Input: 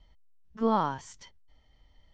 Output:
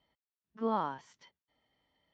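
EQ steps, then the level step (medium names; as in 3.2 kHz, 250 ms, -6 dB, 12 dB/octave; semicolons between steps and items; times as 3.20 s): band-pass 190–3900 Hz; -5.5 dB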